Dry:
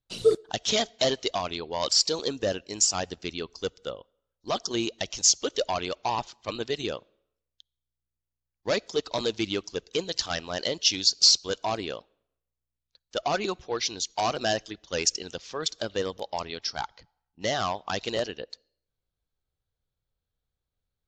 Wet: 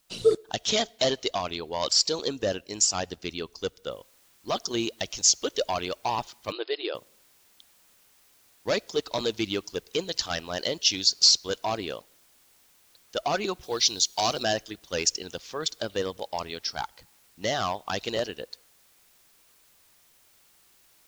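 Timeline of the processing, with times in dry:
3.91 s: noise floor step -69 dB -61 dB
6.52–6.95 s: brick-wall FIR band-pass 300–5200 Hz
13.63–14.43 s: resonant high shelf 2.9 kHz +6 dB, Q 1.5

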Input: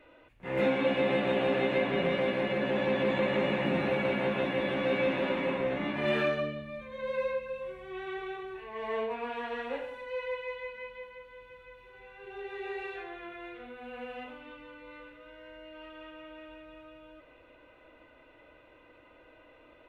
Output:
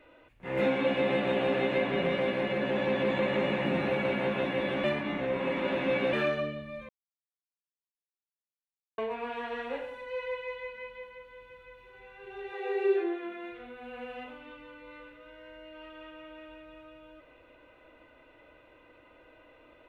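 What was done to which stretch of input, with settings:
4.84–6.13 s: reverse
6.89–8.98 s: mute
12.52–13.50 s: resonant high-pass 600 Hz -> 210 Hz, resonance Q 10

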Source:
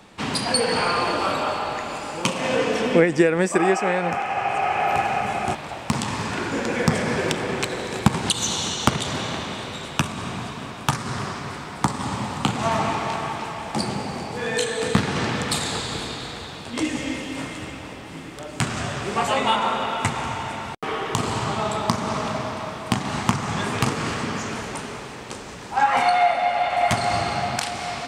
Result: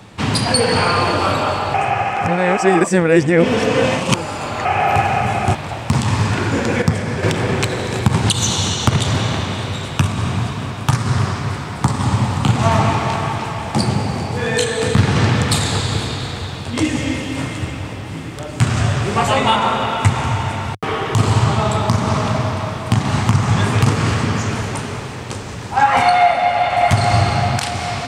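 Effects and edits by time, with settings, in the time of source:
1.74–4.65 s: reverse
6.82–7.23 s: gain -6.5 dB
whole clip: peaking EQ 100 Hz +13.5 dB 0.99 oct; loudness maximiser +6.5 dB; trim -1 dB

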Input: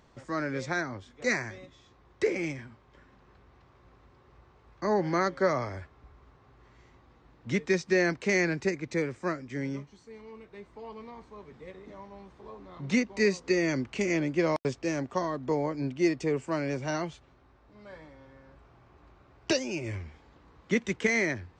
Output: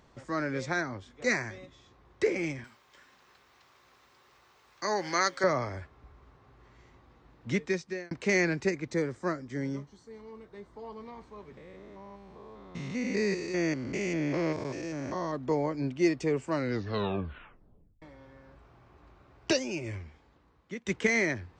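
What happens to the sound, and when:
2.64–5.44 s: tilt EQ +4.5 dB/octave
7.50–8.11 s: fade out
8.88–11.06 s: peaking EQ 2.5 kHz -9.5 dB 0.43 oct
11.57–15.33 s: spectrogram pixelated in time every 200 ms
16.51 s: tape stop 1.51 s
19.57–20.86 s: fade out, to -16.5 dB

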